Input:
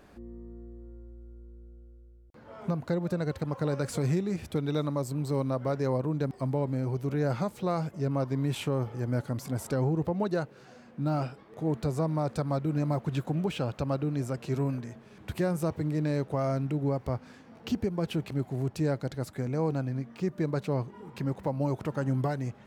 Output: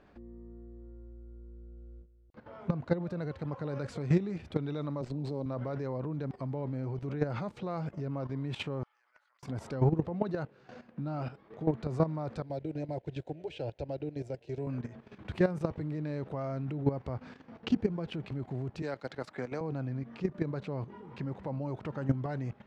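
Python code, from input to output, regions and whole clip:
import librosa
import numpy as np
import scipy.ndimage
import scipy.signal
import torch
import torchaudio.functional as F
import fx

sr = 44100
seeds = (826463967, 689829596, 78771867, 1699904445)

y = fx.chain(x, sr, fx.highpass(hz=130.0, slope=12),
    fx.band_shelf(hz=1800.0, db=-14.0, octaves=1.7),
    fx.running_max(window=3), at=(5.01, 5.46))
y = fx.chain(y, sr, fx.highpass(hz=1100.0, slope=24),
    fx.level_steps(step_db=22),
    fx.doppler_dist(depth_ms=0.19), at=(8.83, 9.43))
y = fx.chain(y, sr, fx.fixed_phaser(hz=490.0, stages=4),
    fx.upward_expand(threshold_db=-49.0, expansion=1.5), at=(12.42, 14.67))
y = fx.chain(y, sr, fx.highpass(hz=780.0, slope=6),
    fx.band_squash(depth_pct=100), at=(18.82, 19.61))
y = scipy.signal.sosfilt(scipy.signal.butter(2, 3800.0, 'lowpass', fs=sr, output='sos'), y)
y = fx.level_steps(y, sr, step_db=13)
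y = y * librosa.db_to_amplitude(4.0)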